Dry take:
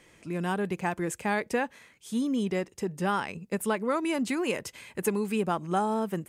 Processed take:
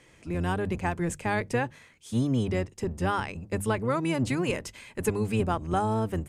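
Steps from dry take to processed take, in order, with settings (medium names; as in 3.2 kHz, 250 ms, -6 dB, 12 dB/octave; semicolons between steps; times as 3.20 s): octave divider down 1 oct, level +1 dB; low-pass 11 kHz 12 dB/octave; hum notches 50/100/150/200 Hz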